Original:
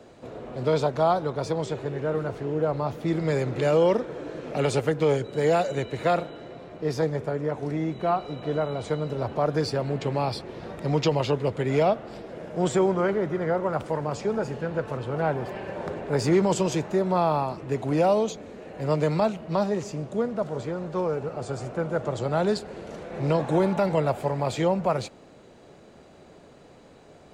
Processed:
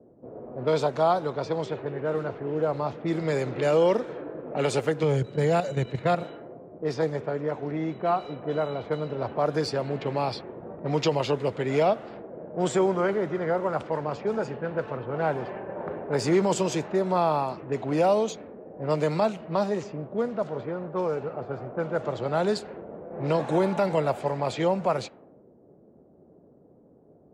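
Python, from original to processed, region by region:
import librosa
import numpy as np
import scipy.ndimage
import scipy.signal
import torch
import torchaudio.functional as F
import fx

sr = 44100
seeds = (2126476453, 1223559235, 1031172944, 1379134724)

y = fx.chain(x, sr, fx.peak_eq(hz=130.0, db=12.5, octaves=1.1),
    fx.level_steps(step_db=10), at=(5.03, 6.23))
y = fx.env_lowpass(y, sr, base_hz=1500.0, full_db=-22.0)
y = fx.highpass(y, sr, hz=180.0, slope=6)
y = fx.env_lowpass(y, sr, base_hz=350.0, full_db=-22.0)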